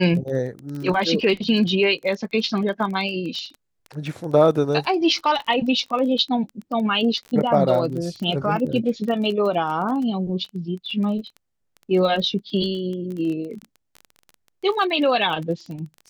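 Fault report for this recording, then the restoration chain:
crackle 22/s -29 dBFS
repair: de-click

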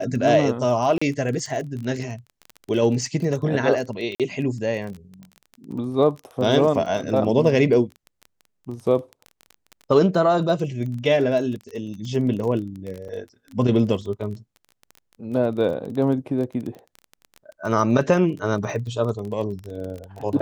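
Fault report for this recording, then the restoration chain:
crackle 21/s -29 dBFS
0.98–1.01 gap 35 ms
4.15–4.2 gap 47 ms
13.08–13.09 gap 6.6 ms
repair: de-click; interpolate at 0.98, 35 ms; interpolate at 4.15, 47 ms; interpolate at 13.08, 6.6 ms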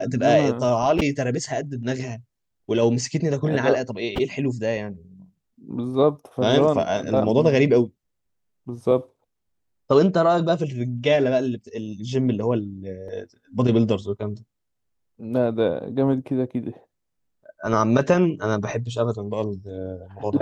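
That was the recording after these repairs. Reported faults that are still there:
none

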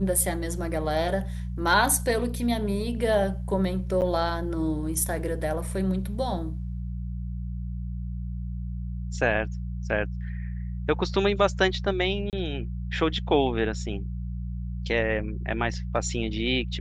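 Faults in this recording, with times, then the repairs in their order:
hum 60 Hz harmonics 3 -32 dBFS
4.01–4.02 gap 8.5 ms
12.3–12.33 gap 28 ms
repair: de-hum 60 Hz, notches 3; interpolate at 4.01, 8.5 ms; interpolate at 12.3, 28 ms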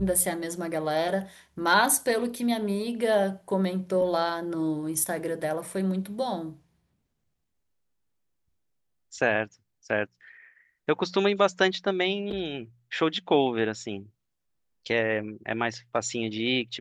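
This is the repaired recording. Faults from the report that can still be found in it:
none

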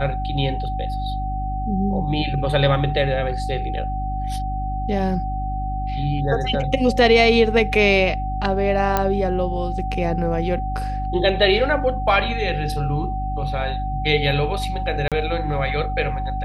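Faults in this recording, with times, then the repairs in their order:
hum 50 Hz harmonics 6 -26 dBFS
tone 760 Hz -27 dBFS
8.97 pop -5 dBFS
15.08–15.12 gap 37 ms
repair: de-click; notch 760 Hz, Q 30; de-hum 50 Hz, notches 6; interpolate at 15.08, 37 ms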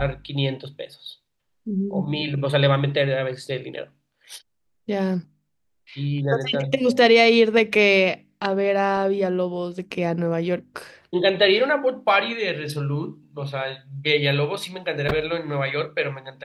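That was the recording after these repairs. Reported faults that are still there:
none

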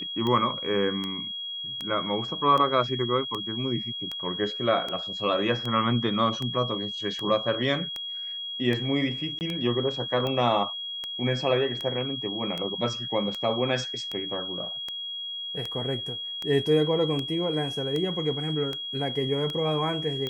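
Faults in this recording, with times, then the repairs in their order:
tick 78 rpm -18 dBFS
tone 3300 Hz -32 dBFS
9.39–9.41 gap 19 ms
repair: de-click; notch 3300 Hz, Q 30; interpolate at 9.39, 19 ms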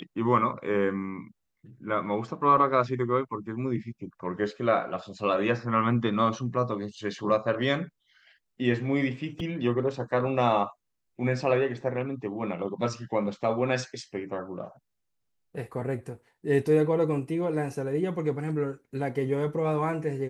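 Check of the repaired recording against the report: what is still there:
none

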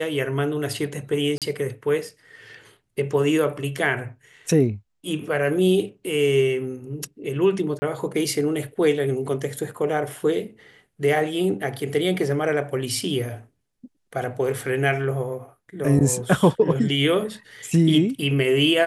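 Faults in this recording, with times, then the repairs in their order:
1.38–1.42 gap 37 ms
7.79–7.82 gap 30 ms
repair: interpolate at 1.38, 37 ms; interpolate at 7.79, 30 ms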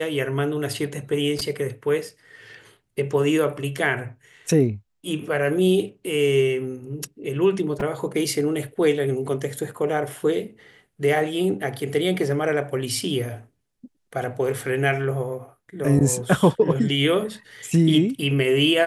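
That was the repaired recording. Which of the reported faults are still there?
none

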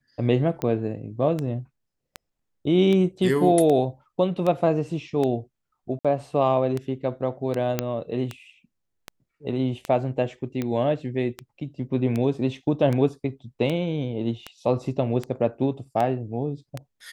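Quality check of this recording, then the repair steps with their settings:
tick 78 rpm -15 dBFS
5.99–6.05 gap 56 ms
7.79 pop -8 dBFS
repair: de-click; interpolate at 5.99, 56 ms

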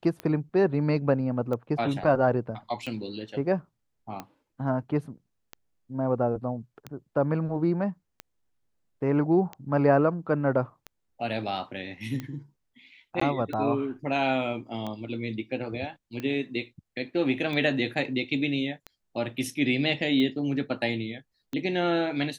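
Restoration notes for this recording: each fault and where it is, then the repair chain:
tick 45 rpm -21 dBFS
13.2–13.21 gap 14 ms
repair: de-click; interpolate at 13.2, 14 ms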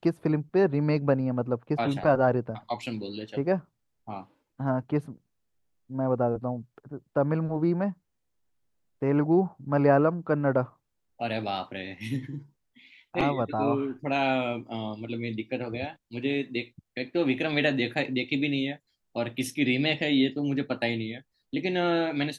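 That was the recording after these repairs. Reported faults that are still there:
none

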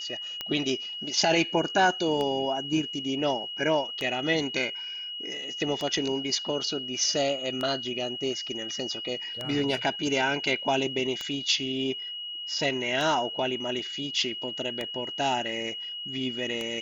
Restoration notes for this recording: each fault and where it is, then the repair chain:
tick 33 1/3 rpm -17 dBFS
tone 2900 Hz -34 dBFS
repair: de-click; notch 2900 Hz, Q 30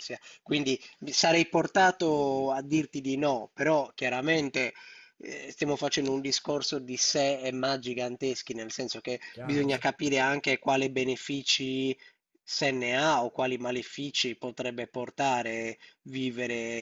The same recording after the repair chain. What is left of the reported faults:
none

